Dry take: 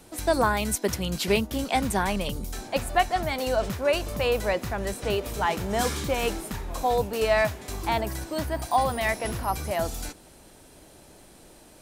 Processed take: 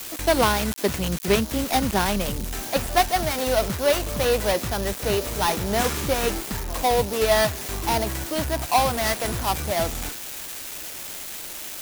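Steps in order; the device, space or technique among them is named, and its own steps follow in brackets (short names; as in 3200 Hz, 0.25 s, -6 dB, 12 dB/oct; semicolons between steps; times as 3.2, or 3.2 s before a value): budget class-D amplifier (switching dead time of 0.19 ms; switching spikes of -20 dBFS); gain +3.5 dB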